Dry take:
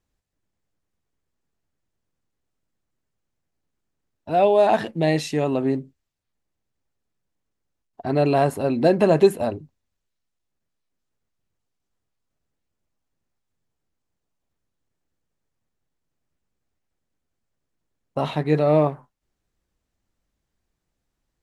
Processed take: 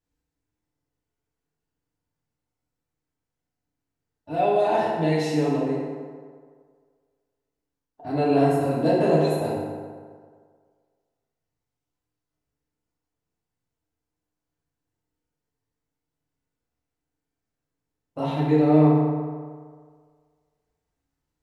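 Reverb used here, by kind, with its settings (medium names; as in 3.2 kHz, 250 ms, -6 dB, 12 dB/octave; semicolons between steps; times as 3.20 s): FDN reverb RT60 1.8 s, low-frequency decay 0.85×, high-frequency decay 0.55×, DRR -8 dB; trim -11 dB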